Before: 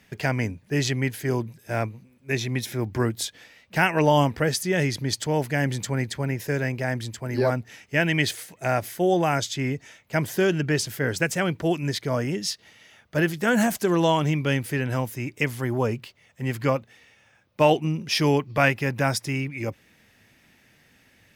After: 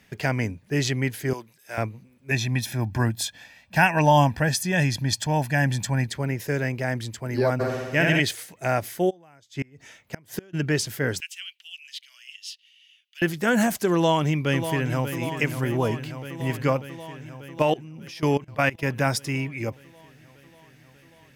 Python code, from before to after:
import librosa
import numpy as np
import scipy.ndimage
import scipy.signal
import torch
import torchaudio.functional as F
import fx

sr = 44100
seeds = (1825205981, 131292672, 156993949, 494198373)

y = fx.highpass(x, sr, hz=1300.0, slope=6, at=(1.33, 1.78))
y = fx.comb(y, sr, ms=1.2, depth=0.65, at=(2.31, 6.07))
y = fx.room_flutter(y, sr, wall_m=11.5, rt60_s=1.4, at=(7.59, 8.19), fade=0.02)
y = fx.gate_flip(y, sr, shuts_db=-16.0, range_db=-30, at=(9.09, 10.53), fade=0.02)
y = fx.ladder_highpass(y, sr, hz=2700.0, resonance_pct=75, at=(11.2, 13.22))
y = fx.echo_throw(y, sr, start_s=13.94, length_s=1.18, ms=590, feedback_pct=75, wet_db=-9.5)
y = fx.level_steps(y, sr, step_db=20, at=(17.62, 18.83))